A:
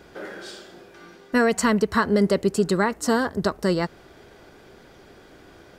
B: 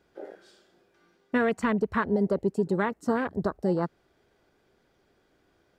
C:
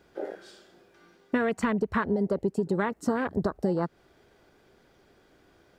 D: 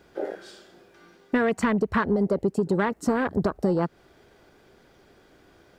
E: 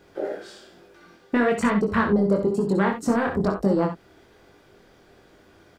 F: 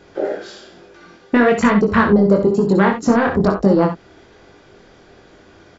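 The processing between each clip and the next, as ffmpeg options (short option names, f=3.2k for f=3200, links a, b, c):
-af "afwtdn=0.0501,alimiter=limit=-13.5dB:level=0:latency=1:release=464,volume=-2dB"
-af "acompressor=threshold=-30dB:ratio=5,volume=6.5dB"
-af "asoftclip=type=tanh:threshold=-17dB,volume=4.5dB"
-filter_complex "[0:a]flanger=delay=20:depth=5.3:speed=1.1,asplit=2[a][b];[b]aecho=0:1:57|67:0.282|0.335[c];[a][c]amix=inputs=2:normalize=0,volume=4.5dB"
-af "volume=7.5dB" -ar 24000 -c:a mp2 -b:a 96k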